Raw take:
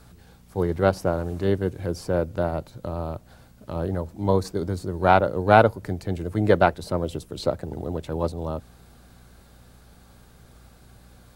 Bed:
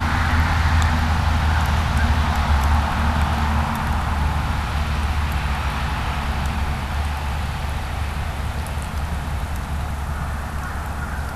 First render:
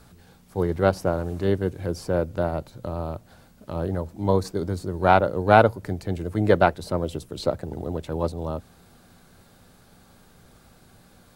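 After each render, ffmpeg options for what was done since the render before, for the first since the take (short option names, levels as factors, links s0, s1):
-af "bandreject=f=60:t=h:w=4,bandreject=f=120:t=h:w=4"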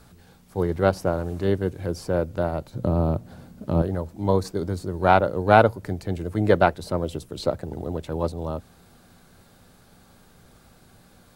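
-filter_complex "[0:a]asettb=1/sr,asplit=3[s0][s1][s2];[s0]atrim=end=2.734[s3];[s1]atrim=start=2.73:end=3.82,asetpts=PTS-STARTPTS,afade=t=in:d=0.004:c=qsin,afade=t=out:st=1.086:d=0.004:c=qsin,equalizer=f=180:w=0.34:g=11.5[s4];[s2]atrim=start=3.816[s5];[s3][s4]acrossfade=d=0.004:c1=hsin:c2=qsin[s6];[s6][s5]acrossfade=d=0.004:c1=qsin:c2=hsin"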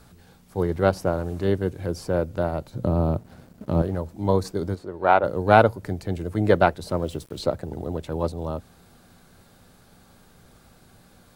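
-filter_complex "[0:a]asettb=1/sr,asplit=3[s0][s1][s2];[s0]atrim=end=3.184[s3];[s1]atrim=start=3.18:end=3.99,asetpts=PTS-STARTPTS,afade=t=in:d=0.004:c=qsin,afade=t=out:st=0.806:d=0.004:c=qsin,aeval=exprs='sgn(val(0))*max(abs(val(0))-0.00299,0)':c=same[s4];[s2]atrim=start=3.986[s5];[s3][s4]acrossfade=d=0.004:c1=hsin:c2=qsin[s6];[s6][s5]acrossfade=d=0.004:c1=qsin:c2=hsin,asplit=3[s7][s8][s9];[s7]afade=t=out:st=4.74:d=0.02[s10];[s8]bass=f=250:g=-13,treble=f=4000:g=-14,afade=t=in:st=4.74:d=0.02,afade=t=out:st=5.23:d=0.02[s11];[s9]afade=t=in:st=5.23:d=0.02[s12];[s10][s11][s12]amix=inputs=3:normalize=0,asettb=1/sr,asplit=3[s13][s14][s15];[s13]atrim=end=6.904[s16];[s14]atrim=start=6.9:end=7.43,asetpts=PTS-STARTPTS,afade=t=in:d=0.004:c=qsin,afade=t=out:st=0.526:d=0.004:c=qsin,aeval=exprs='val(0)*gte(abs(val(0)),0.00447)':c=same[s17];[s15]atrim=start=7.426[s18];[s16][s17]acrossfade=d=0.004:c1=hsin:c2=qsin[s19];[s19][s18]acrossfade=d=0.004:c1=qsin:c2=hsin"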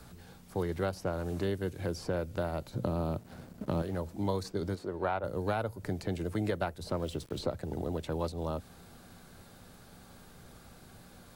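-filter_complex "[0:a]alimiter=limit=0.422:level=0:latency=1:release=387,acrossover=split=130|1700|6400[s0][s1][s2][s3];[s0]acompressor=threshold=0.00891:ratio=4[s4];[s1]acompressor=threshold=0.0251:ratio=4[s5];[s2]acompressor=threshold=0.00562:ratio=4[s6];[s3]acompressor=threshold=0.00158:ratio=4[s7];[s4][s5][s6][s7]amix=inputs=4:normalize=0"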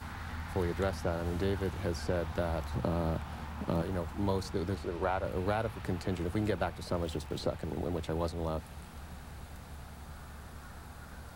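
-filter_complex "[1:a]volume=0.075[s0];[0:a][s0]amix=inputs=2:normalize=0"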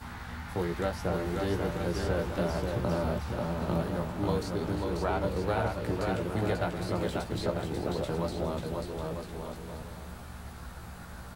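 -filter_complex "[0:a]asplit=2[s0][s1];[s1]adelay=17,volume=0.562[s2];[s0][s2]amix=inputs=2:normalize=0,aecho=1:1:540|945|1249|1477|1647:0.631|0.398|0.251|0.158|0.1"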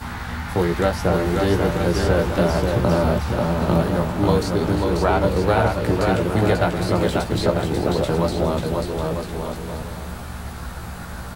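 -af "volume=3.76"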